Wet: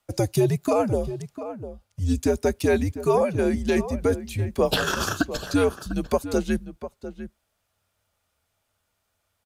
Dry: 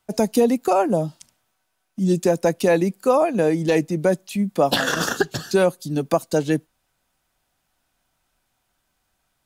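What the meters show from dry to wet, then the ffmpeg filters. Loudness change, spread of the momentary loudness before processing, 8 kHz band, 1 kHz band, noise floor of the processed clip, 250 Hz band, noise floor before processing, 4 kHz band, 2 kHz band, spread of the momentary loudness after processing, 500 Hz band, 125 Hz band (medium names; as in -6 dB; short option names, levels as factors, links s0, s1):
-3.5 dB, 6 LU, -3.0 dB, -5.5 dB, -76 dBFS, -3.5 dB, -73 dBFS, -3.0 dB, -3.5 dB, 15 LU, -4.0 dB, 0.0 dB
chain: -filter_complex "[0:a]equalizer=f=62:w=0.68:g=-6,afreqshift=-100,asplit=2[s0][s1];[s1]adelay=699.7,volume=0.251,highshelf=f=4000:g=-15.7[s2];[s0][s2]amix=inputs=2:normalize=0,volume=0.708"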